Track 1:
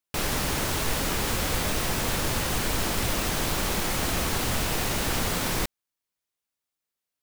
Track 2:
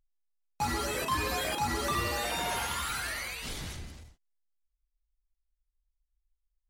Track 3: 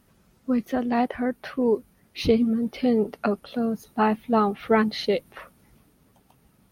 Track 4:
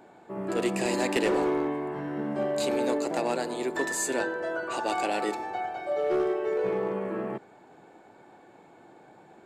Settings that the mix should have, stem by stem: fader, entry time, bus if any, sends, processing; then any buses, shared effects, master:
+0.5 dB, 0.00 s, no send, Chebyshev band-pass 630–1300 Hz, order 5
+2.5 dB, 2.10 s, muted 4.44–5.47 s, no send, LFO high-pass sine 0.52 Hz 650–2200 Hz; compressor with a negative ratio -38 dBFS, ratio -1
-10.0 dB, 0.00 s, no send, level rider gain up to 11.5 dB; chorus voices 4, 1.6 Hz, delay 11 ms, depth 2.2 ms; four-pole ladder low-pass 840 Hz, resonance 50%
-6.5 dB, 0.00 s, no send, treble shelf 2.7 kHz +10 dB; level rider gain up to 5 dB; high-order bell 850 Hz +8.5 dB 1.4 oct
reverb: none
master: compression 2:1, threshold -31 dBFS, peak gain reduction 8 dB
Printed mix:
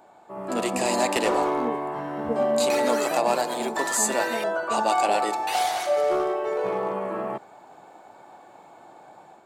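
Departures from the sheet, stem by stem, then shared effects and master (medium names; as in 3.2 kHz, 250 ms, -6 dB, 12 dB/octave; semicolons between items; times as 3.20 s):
stem 1: muted; master: missing compression 2:1, threshold -31 dBFS, peak gain reduction 8 dB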